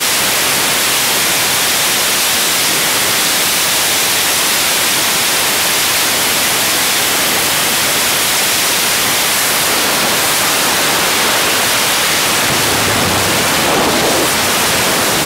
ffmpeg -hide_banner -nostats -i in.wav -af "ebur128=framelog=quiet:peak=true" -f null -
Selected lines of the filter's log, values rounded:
Integrated loudness:
  I:         -10.5 LUFS
  Threshold: -20.5 LUFS
Loudness range:
  LRA:         0.4 LU
  Threshold: -30.5 LUFS
  LRA low:   -10.7 LUFS
  LRA high:  -10.3 LUFS
True peak:
  Peak:       -2.6 dBFS